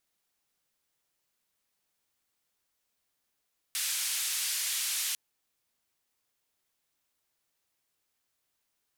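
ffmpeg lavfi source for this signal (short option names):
-f lavfi -i "anoisesrc=c=white:d=1.4:r=44100:seed=1,highpass=f=2200,lowpass=f=12000,volume=-23.6dB"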